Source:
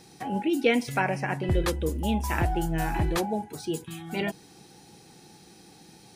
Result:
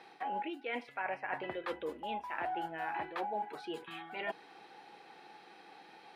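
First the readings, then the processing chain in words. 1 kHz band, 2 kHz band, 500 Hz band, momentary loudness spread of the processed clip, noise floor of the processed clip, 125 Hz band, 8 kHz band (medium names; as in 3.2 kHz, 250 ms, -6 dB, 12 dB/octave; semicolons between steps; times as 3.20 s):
-5.5 dB, -8.5 dB, -11.5 dB, 17 LU, -58 dBFS, -29.5 dB, under -25 dB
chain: high-pass 770 Hz 12 dB/octave; reverse; compression 8:1, threshold -40 dBFS, peak gain reduction 17.5 dB; reverse; distance through air 480 m; trim +8 dB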